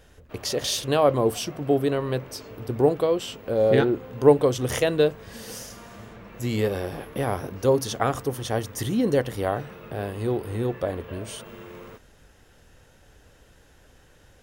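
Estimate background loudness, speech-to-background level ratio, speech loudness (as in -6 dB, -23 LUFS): -44.0 LUFS, 19.5 dB, -24.5 LUFS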